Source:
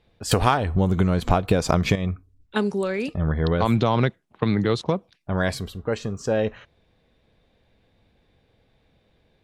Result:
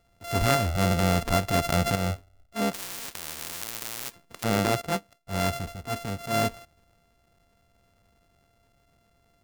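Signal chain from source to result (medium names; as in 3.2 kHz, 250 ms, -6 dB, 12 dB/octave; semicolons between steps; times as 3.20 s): sorted samples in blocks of 64 samples; transient shaper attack -11 dB, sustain +1 dB; 2.73–4.44 s: spectrum-flattening compressor 10:1; trim -1.5 dB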